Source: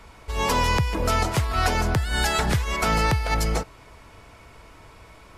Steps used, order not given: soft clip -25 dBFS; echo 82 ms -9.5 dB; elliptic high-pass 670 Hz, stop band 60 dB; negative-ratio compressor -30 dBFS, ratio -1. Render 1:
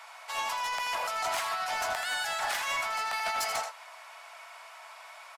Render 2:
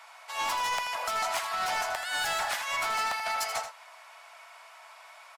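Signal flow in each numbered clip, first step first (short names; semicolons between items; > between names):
elliptic high-pass > negative-ratio compressor > echo > soft clip; elliptic high-pass > soft clip > negative-ratio compressor > echo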